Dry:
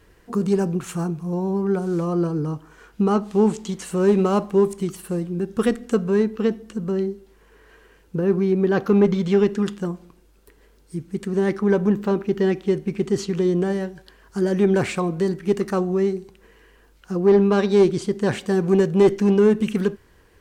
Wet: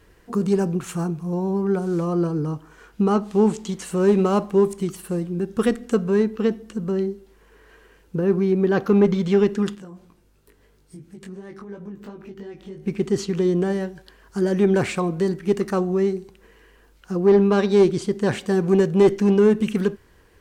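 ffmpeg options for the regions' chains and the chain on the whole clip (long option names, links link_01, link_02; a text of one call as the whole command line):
ffmpeg -i in.wav -filter_complex "[0:a]asettb=1/sr,asplit=3[link_01][link_02][link_03];[link_01]atrim=end=9.754[link_04];[link_02]atrim=start=9.75:end=12.86,asetpts=PTS-STARTPTS,afade=type=in:duration=0.004:curve=qsin,afade=type=out:start_time=3.106:duration=0.004:curve=qsin,acompressor=threshold=-32dB:ratio=6:attack=3.2:release=140:knee=1:detection=peak,flanger=delay=18.5:depth=2.9:speed=2.9,aeval=exprs='val(0)+0.000794*(sin(2*PI*50*n/s)+sin(2*PI*2*50*n/s)/2+sin(2*PI*3*50*n/s)/3+sin(2*PI*4*50*n/s)/4+sin(2*PI*5*50*n/s)/5)':channel_layout=same[link_05];[link_03]atrim=start=12.856[link_06];[link_04][link_05]acrossfade=duration=0.004:curve1=hsin:curve2=qsin[link_07];[link_07][link_06]acrossfade=duration=0.004:curve1=qsin:curve2=hsin" out.wav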